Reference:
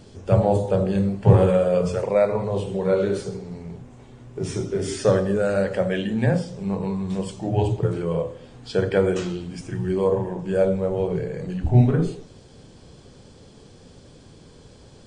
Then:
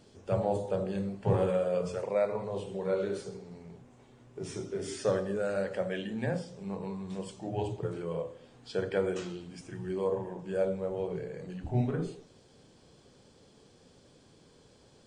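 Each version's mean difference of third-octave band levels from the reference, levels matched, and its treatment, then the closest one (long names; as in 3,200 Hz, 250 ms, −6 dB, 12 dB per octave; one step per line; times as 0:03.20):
1.5 dB: low-shelf EQ 130 Hz −10.5 dB
level −9 dB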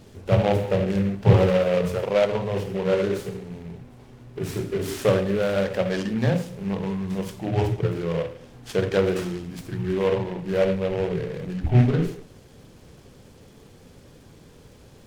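3.0 dB: short delay modulated by noise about 1,800 Hz, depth 0.047 ms
level −1.5 dB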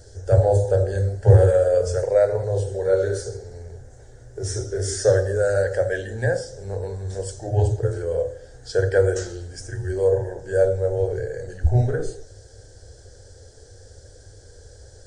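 6.0 dB: drawn EQ curve 100 Hz 0 dB, 180 Hz −29 dB, 490 Hz −3 dB, 790 Hz −9 dB, 1,100 Hz −23 dB, 1,600 Hz 0 dB, 2,500 Hz −23 dB, 5,800 Hz +1 dB, 10,000 Hz −1 dB
level +6.5 dB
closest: first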